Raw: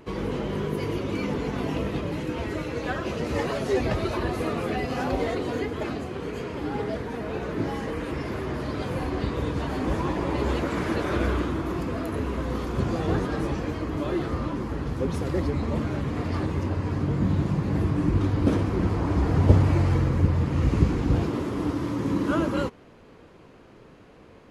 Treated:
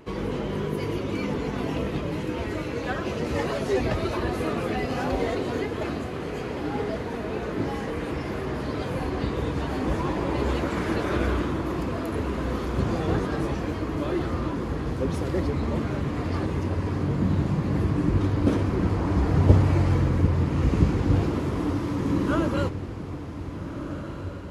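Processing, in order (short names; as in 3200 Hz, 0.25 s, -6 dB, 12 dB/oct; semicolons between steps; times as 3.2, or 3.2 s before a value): diffused feedback echo 1.622 s, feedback 56%, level -11 dB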